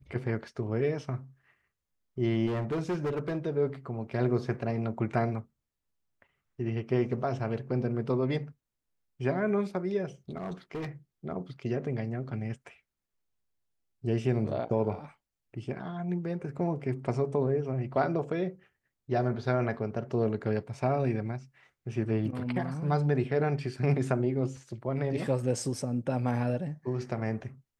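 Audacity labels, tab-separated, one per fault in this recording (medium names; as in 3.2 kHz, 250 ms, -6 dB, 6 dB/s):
2.460000	3.470000	clipped -27 dBFS
10.370000	10.890000	clipped -32 dBFS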